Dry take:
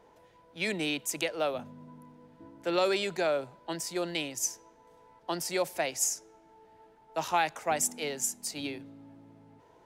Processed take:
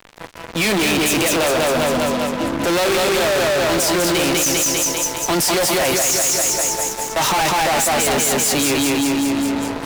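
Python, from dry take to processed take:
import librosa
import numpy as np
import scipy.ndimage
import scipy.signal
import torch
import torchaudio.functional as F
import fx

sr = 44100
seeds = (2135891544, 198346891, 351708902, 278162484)

y = fx.doubler(x, sr, ms=15.0, db=-12.0)
y = fx.echo_feedback(y, sr, ms=198, feedback_pct=50, wet_db=-3.0)
y = fx.fuzz(y, sr, gain_db=51.0, gate_db=-53.0)
y = F.gain(torch.from_numpy(y), -3.0).numpy()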